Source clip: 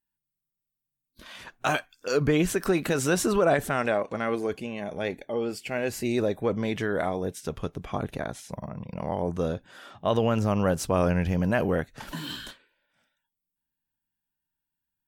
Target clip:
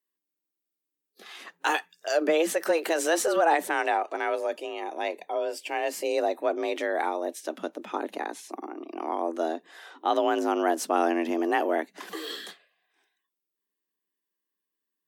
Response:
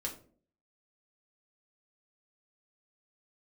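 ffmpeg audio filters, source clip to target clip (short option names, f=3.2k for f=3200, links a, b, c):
-filter_complex "[0:a]afreqshift=160,acrossover=split=230[a][b];[a]acrusher=bits=3:mix=0:aa=0.000001[c];[c][b]amix=inputs=2:normalize=0"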